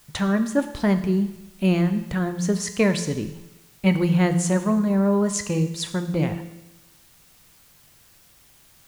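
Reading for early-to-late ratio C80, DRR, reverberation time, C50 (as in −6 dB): 13.0 dB, 8.0 dB, 1.0 s, 11.0 dB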